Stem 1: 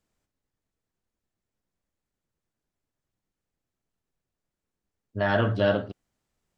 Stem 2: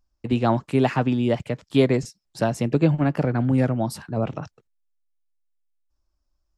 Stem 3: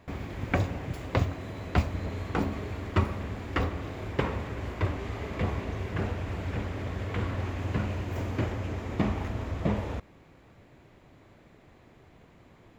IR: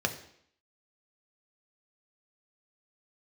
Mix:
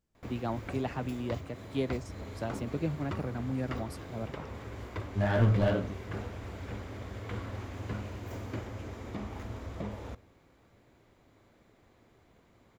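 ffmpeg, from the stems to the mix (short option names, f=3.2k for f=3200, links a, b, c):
-filter_complex "[0:a]lowshelf=f=310:g=11,flanger=delay=16.5:depth=3.9:speed=2.6,aeval=exprs='clip(val(0),-1,0.133)':c=same,volume=-5dB[a];[1:a]volume=-14dB[b];[2:a]highshelf=f=4.8k:g=6.5,alimiter=limit=-19dB:level=0:latency=1:release=264,adelay=150,volume=-8dB,asplit=2[c][d];[d]volume=-20dB[e];[3:a]atrim=start_sample=2205[f];[e][f]afir=irnorm=-1:irlink=0[g];[a][b][c][g]amix=inputs=4:normalize=0"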